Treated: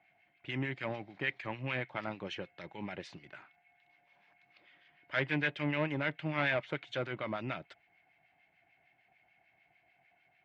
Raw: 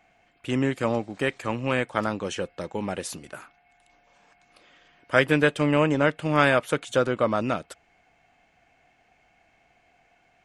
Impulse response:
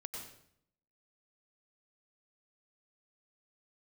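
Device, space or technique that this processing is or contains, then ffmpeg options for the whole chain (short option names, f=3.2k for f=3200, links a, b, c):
guitar amplifier with harmonic tremolo: -filter_complex "[0:a]acrossover=split=1300[a][b];[a]aeval=exprs='val(0)*(1-0.7/2+0.7/2*cos(2*PI*6.7*n/s))':c=same[c];[b]aeval=exprs='val(0)*(1-0.7/2-0.7/2*cos(2*PI*6.7*n/s))':c=same[d];[c][d]amix=inputs=2:normalize=0,asoftclip=type=tanh:threshold=-16.5dB,highpass=110,equalizer=f=130:t=q:w=4:g=3,equalizer=f=240:t=q:w=4:g=-8,equalizer=f=480:t=q:w=4:g=-9,equalizer=f=1.2k:t=q:w=4:g=-6,equalizer=f=2.1k:t=q:w=4:g=7,lowpass=f=4.1k:w=0.5412,lowpass=f=4.1k:w=1.3066,volume=-5dB"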